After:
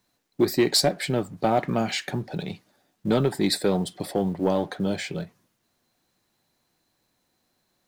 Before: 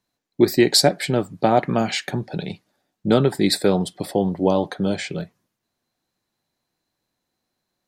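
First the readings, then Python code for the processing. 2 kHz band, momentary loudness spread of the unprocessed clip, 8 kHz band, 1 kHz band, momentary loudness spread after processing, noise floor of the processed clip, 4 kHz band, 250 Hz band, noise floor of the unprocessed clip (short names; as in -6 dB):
-4.5 dB, 15 LU, -4.5 dB, -5.0 dB, 13 LU, -73 dBFS, -4.5 dB, -4.5 dB, -80 dBFS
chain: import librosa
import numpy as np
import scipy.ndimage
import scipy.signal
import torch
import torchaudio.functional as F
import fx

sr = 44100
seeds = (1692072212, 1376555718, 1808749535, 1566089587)

y = fx.law_mismatch(x, sr, coded='mu')
y = 10.0 ** (-6.5 / 20.0) * np.tanh(y / 10.0 ** (-6.5 / 20.0))
y = y * librosa.db_to_amplitude(-4.0)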